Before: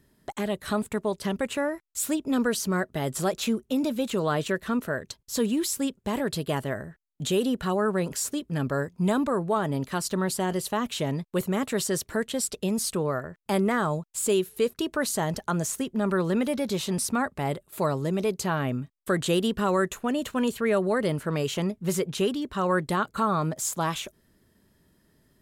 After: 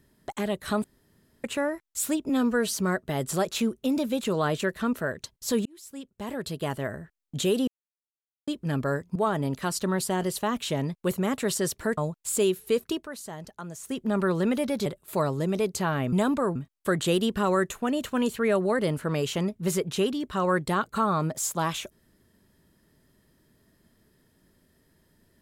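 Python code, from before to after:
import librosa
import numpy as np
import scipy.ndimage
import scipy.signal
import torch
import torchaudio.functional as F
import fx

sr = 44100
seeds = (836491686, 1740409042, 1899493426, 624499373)

y = fx.edit(x, sr, fx.room_tone_fill(start_s=0.84, length_s=0.6),
    fx.stretch_span(start_s=2.29, length_s=0.27, factor=1.5),
    fx.fade_in_span(start_s=5.52, length_s=1.32),
    fx.silence(start_s=7.54, length_s=0.8),
    fx.move(start_s=9.02, length_s=0.43, to_s=18.77),
    fx.cut(start_s=12.27, length_s=1.6),
    fx.fade_down_up(start_s=14.81, length_s=1.06, db=-12.0, fade_s=0.16),
    fx.cut(start_s=16.75, length_s=0.75), tone=tone)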